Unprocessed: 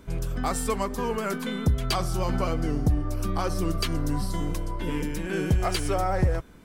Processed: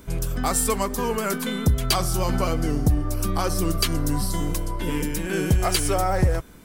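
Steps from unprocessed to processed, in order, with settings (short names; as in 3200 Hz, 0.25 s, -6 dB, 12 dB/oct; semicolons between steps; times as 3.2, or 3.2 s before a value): high shelf 6700 Hz +11.5 dB; gain +3 dB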